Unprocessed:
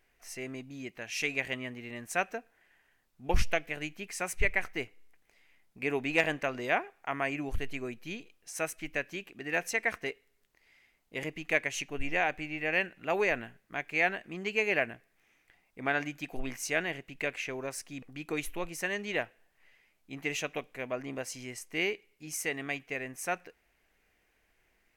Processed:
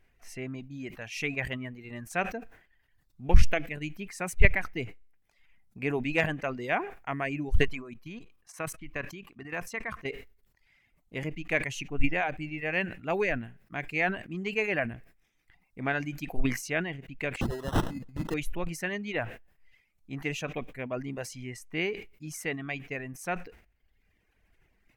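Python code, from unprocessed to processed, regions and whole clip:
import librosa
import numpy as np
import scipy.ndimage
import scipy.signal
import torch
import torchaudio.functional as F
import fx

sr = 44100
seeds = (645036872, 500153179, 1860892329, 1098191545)

y = fx.chain(x, sr, fx.peak_eq(hz=1100.0, db=11.0, octaves=0.41),
    fx.level_steps(step_db=11), at=(7.63, 10.07))
y = fx.chain(y, sr, fx.peak_eq(hz=13000.0, db=13.5, octaves=2.2),
    fx.sample_hold(seeds[0], rate_hz=2300.0, jitter_pct=0), at=(17.41, 18.34))
y = fx.dereverb_blind(y, sr, rt60_s=1.0)
y = fx.bass_treble(y, sr, bass_db=10, treble_db=-5)
y = fx.sustainer(y, sr, db_per_s=110.0)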